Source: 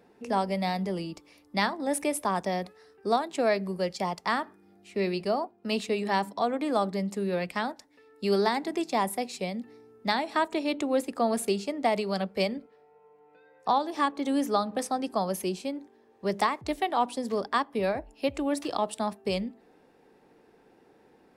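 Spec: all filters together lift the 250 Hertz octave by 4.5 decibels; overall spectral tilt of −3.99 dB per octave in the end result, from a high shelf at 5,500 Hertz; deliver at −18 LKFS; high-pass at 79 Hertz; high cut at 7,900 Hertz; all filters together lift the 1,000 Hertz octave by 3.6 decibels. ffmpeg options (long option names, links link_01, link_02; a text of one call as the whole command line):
ffmpeg -i in.wav -af "highpass=79,lowpass=7900,equalizer=frequency=250:width_type=o:gain=5.5,equalizer=frequency=1000:width_type=o:gain=4,highshelf=frequency=5500:gain=7.5,volume=8.5dB" out.wav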